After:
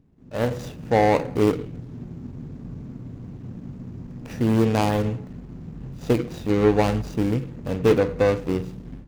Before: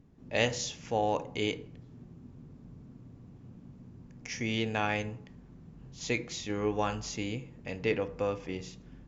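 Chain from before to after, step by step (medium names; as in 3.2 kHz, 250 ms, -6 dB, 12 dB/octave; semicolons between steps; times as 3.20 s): median filter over 41 samples; level rider gain up to 14 dB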